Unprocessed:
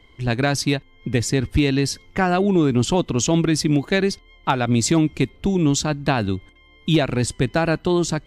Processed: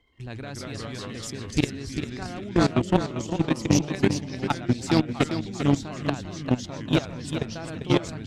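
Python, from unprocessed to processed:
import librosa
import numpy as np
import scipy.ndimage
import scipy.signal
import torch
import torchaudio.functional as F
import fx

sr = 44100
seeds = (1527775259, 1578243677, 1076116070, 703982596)

p1 = fx.echo_pitch(x, sr, ms=126, semitones=-2, count=3, db_per_echo=-3.0)
p2 = fx.level_steps(p1, sr, step_db=15)
p3 = p2 + fx.echo_feedback(p2, sr, ms=397, feedback_pct=24, wet_db=-6, dry=0)
y = fx.cheby_harmonics(p3, sr, harmonics=(3, 7), levels_db=(-17, -39), full_scale_db=-5.0)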